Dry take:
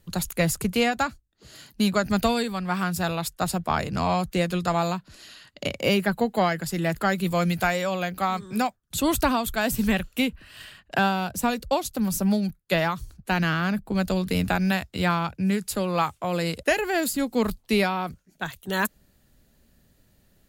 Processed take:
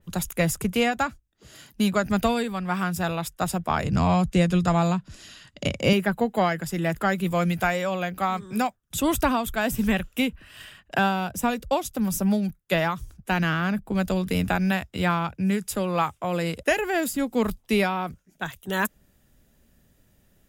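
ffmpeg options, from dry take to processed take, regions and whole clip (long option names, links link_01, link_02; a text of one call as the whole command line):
ffmpeg -i in.wav -filter_complex "[0:a]asettb=1/sr,asplit=3[link_01][link_02][link_03];[link_01]atrim=end=3.844[link_04];[link_02]atrim=start=3.84:end=5.93,asetpts=PTS-STARTPTS,afade=type=in:duration=0.004:curve=qsin,afade=type=out:start_time=2.086:duration=0.004:curve=qsin,lowpass=8700,bass=frequency=250:gain=8,treble=frequency=4000:gain=5[link_05];[link_03]atrim=start=5.926[link_06];[link_04][link_05]acrossfade=duration=0.004:curve1=hsin:curve2=qsin[link_07];[link_07][link_06]acrossfade=duration=0.004:curve1=qsin:curve2=hsin,bandreject=frequency=4300:width=5.7,adynamicequalizer=threshold=0.0112:dfrequency=3400:dqfactor=0.7:tfrequency=3400:tqfactor=0.7:attack=5:release=100:ratio=0.375:range=2:mode=cutabove:tftype=highshelf" out.wav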